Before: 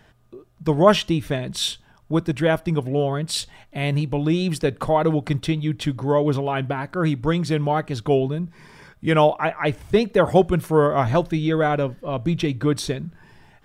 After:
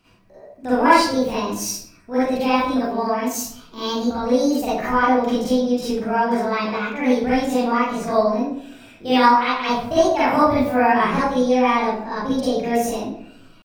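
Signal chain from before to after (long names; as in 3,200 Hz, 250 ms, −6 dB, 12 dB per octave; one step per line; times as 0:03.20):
pitch shifter +8 semitones
convolution reverb RT60 0.65 s, pre-delay 38 ms, DRR −11 dB
level −10 dB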